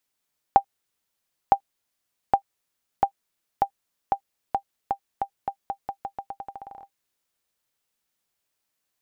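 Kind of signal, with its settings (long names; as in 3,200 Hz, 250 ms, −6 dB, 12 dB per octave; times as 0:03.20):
bouncing ball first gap 0.96 s, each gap 0.85, 793 Hz, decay 84 ms −4 dBFS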